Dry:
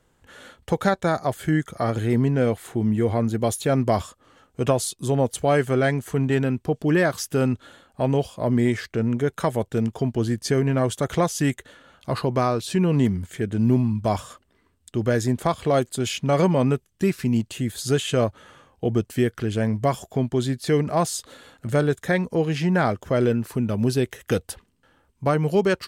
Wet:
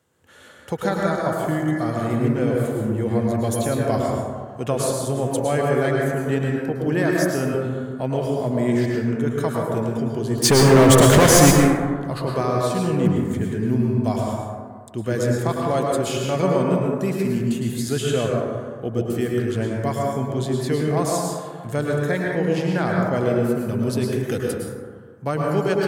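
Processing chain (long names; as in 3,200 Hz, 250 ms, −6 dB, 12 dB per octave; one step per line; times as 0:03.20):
high-pass filter 74 Hz 24 dB per octave
high-shelf EQ 7,700 Hz +5.5 dB
0:10.38–0:11.51: leveller curve on the samples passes 5
dense smooth reverb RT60 1.7 s, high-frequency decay 0.3×, pre-delay 95 ms, DRR −2 dB
level −4 dB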